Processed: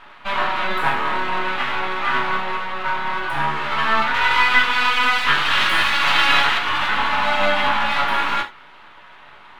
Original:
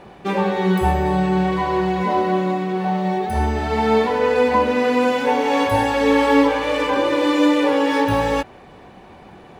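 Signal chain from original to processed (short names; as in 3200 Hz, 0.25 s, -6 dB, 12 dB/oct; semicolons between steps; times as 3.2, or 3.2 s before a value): 4.14–6.58 tilt shelf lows -7.5 dB, about 670 Hz; full-wave rectifier; band shelf 1800 Hz +13 dB 2.6 oct; non-linear reverb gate 0.11 s falling, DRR 1.5 dB; gain -9.5 dB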